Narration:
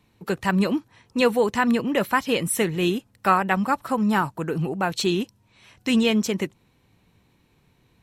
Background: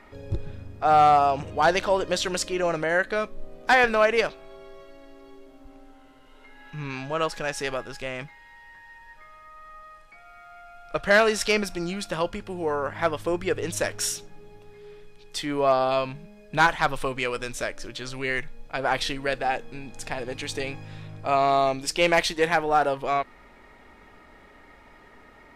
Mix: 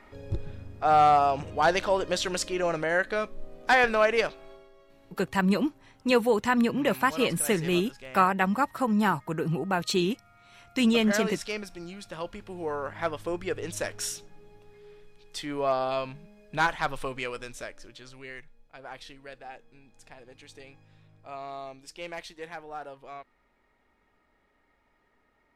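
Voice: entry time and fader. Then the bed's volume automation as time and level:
4.90 s, −3.0 dB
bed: 0:04.50 −2.5 dB
0:04.70 −11 dB
0:12.07 −11 dB
0:12.57 −5.5 dB
0:17.18 −5.5 dB
0:18.67 −18 dB

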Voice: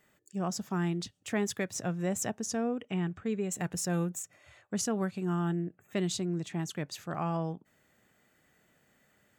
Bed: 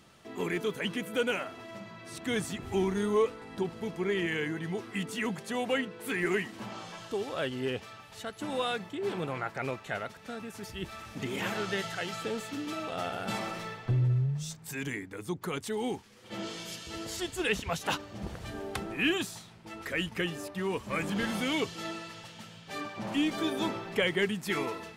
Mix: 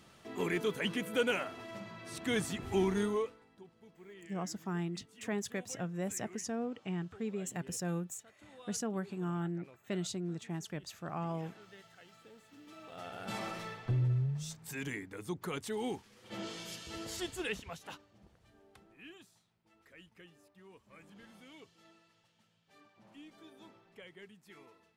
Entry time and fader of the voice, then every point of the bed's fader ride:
3.95 s, −5.5 dB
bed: 0:03.02 −1.5 dB
0:03.58 −23 dB
0:12.42 −23 dB
0:13.44 −4 dB
0:17.29 −4 dB
0:18.31 −25 dB

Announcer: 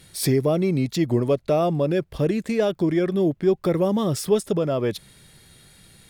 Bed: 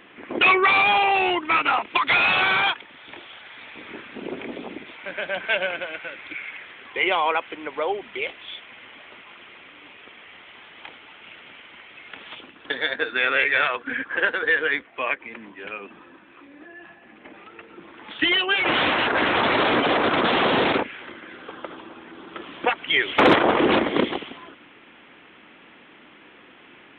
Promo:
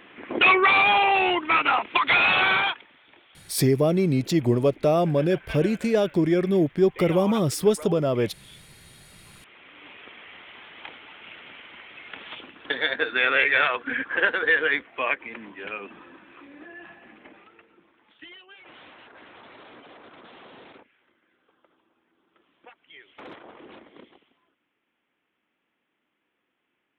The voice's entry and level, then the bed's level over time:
3.35 s, 0.0 dB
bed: 0:02.54 −0.5 dB
0:03.12 −14 dB
0:09.05 −14 dB
0:09.89 0 dB
0:17.06 0 dB
0:18.41 −28 dB

